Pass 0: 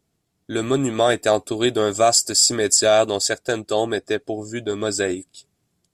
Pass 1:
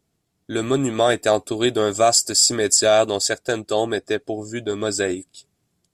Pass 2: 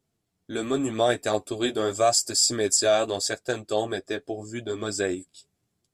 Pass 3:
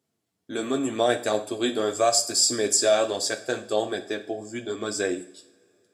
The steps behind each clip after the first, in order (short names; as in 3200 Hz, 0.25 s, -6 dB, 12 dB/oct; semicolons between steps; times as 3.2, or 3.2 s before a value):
nothing audible
flange 0.84 Hz, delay 7.4 ms, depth 5.7 ms, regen -28%; gain -2 dB
HPF 150 Hz 12 dB/oct; two-slope reverb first 0.51 s, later 3.6 s, from -27 dB, DRR 8 dB